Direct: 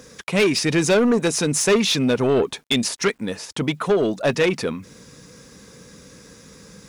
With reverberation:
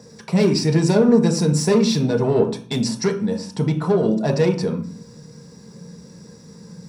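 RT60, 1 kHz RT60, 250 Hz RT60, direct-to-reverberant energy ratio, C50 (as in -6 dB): 0.40 s, 0.45 s, 0.70 s, 2.0 dB, 10.5 dB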